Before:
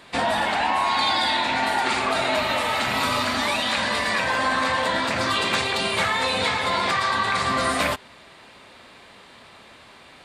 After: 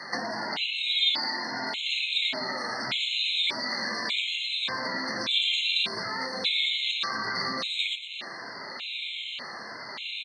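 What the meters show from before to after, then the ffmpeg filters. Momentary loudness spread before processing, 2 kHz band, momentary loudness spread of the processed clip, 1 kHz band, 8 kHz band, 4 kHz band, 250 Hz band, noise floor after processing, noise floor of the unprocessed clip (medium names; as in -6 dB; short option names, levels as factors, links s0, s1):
2 LU, -7.0 dB, 13 LU, -14.0 dB, -11.5 dB, +0.5 dB, -10.0 dB, -40 dBFS, -48 dBFS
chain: -filter_complex "[0:a]afftfilt=real='re*pow(10,7/40*sin(2*PI*(1.7*log(max(b,1)*sr/1024/100)/log(2)-(-1.6)*(pts-256)/sr)))':imag='im*pow(10,7/40*sin(2*PI*(1.7*log(max(b,1)*sr/1024/100)/log(2)-(-1.6)*(pts-256)/sr)))':win_size=1024:overlap=0.75,adynamicequalizer=threshold=0.0126:dfrequency=340:dqfactor=0.99:tfrequency=340:tqfactor=0.99:attack=5:release=100:ratio=0.375:range=2:mode=boostabove:tftype=bell,acrossover=split=360|3000[s0][s1][s2];[s1]acompressor=threshold=0.0282:ratio=2.5[s3];[s0][s3][s2]amix=inputs=3:normalize=0,highpass=f=130:w=0.5412,highpass=f=130:w=1.3066,acompressor=threshold=0.0158:ratio=10,firequalizer=gain_entry='entry(360,0);entry(2500,11);entry(3600,15);entry(12000,-23)':delay=0.05:min_phase=1,asplit=5[s4][s5][s6][s7][s8];[s5]adelay=115,afreqshift=130,volume=0.282[s9];[s6]adelay=230,afreqshift=260,volume=0.119[s10];[s7]adelay=345,afreqshift=390,volume=0.0495[s11];[s8]adelay=460,afreqshift=520,volume=0.0209[s12];[s4][s9][s10][s11][s12]amix=inputs=5:normalize=0,afftfilt=real='re*gt(sin(2*PI*0.85*pts/sr)*(1-2*mod(floor(b*sr/1024/2100),2)),0)':imag='im*gt(sin(2*PI*0.85*pts/sr)*(1-2*mod(floor(b*sr/1024/2100),2)),0)':win_size=1024:overlap=0.75,volume=1.58"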